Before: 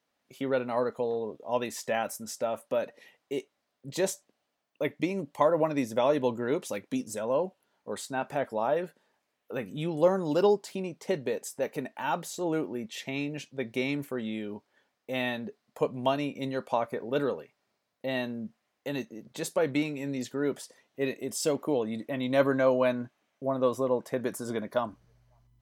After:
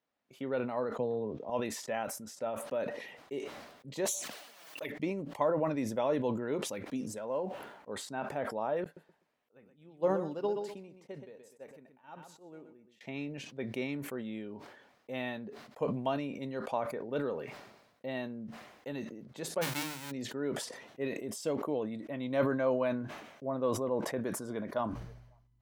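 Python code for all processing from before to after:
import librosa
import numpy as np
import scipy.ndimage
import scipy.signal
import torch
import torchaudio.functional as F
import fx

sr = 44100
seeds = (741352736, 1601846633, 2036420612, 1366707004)

y = fx.chain(x, sr, fx.lowpass(hz=6800.0, slope=24),
    fx.low_shelf(hz=230.0, db=11.5),
    fx.band_squash(depth_pct=40), at=(0.96, 1.5))
y = fx.chain(y, sr, fx.tilt_eq(slope=3.5),
    fx.env_flanger(rest_ms=7.2, full_db=-26.0),
    fx.pre_swell(db_per_s=54.0), at=(4.05, 4.92))
y = fx.chain(y, sr, fx.median_filter(points=9),
    fx.low_shelf(hz=250.0, db=-6.0), at=(7.18, 7.89))
y = fx.chain(y, sr, fx.echo_feedback(ms=125, feedback_pct=25, wet_db=-11),
    fx.upward_expand(threshold_db=-40.0, expansion=2.5), at=(8.84, 13.01))
y = fx.envelope_flatten(y, sr, power=0.1, at=(19.61, 20.1), fade=0.02)
y = fx.hum_notches(y, sr, base_hz=50, count=8, at=(19.61, 20.1), fade=0.02)
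y = fx.high_shelf(y, sr, hz=4100.0, db=-9.5)
y = fx.sustainer(y, sr, db_per_s=57.0)
y = F.gain(torch.from_numpy(y), -6.0).numpy()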